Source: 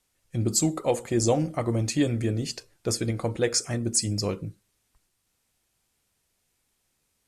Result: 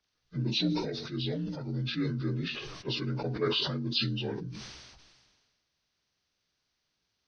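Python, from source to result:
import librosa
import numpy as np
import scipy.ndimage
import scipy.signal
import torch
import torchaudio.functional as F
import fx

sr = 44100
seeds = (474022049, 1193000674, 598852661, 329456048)

y = fx.partial_stretch(x, sr, pct=81)
y = fx.peak_eq(y, sr, hz=690.0, db=fx.line((0.67, -15.0), (2.2, -7.0)), octaves=2.2, at=(0.67, 2.2), fade=0.02)
y = fx.sustainer(y, sr, db_per_s=36.0)
y = y * 10.0 ** (-5.0 / 20.0)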